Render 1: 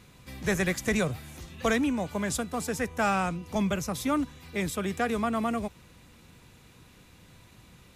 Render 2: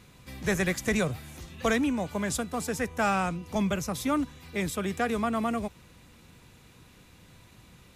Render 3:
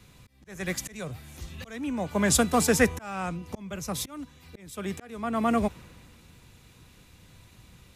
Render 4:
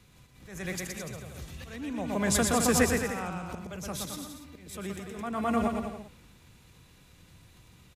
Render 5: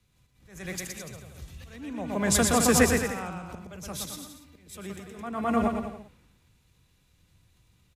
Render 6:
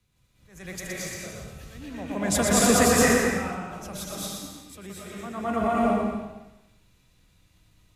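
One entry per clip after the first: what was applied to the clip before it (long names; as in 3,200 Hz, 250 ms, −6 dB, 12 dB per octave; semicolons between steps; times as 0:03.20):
no processing that can be heard
volume swells 737 ms; multiband upward and downward expander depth 40%; level +6.5 dB
on a send: bouncing-ball delay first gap 120 ms, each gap 0.8×, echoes 5; on the sum: background raised ahead of every attack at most 77 dB per second; level −5 dB
multiband upward and downward expander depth 40%
convolution reverb RT60 0.90 s, pre-delay 181 ms, DRR −5 dB; level −2.5 dB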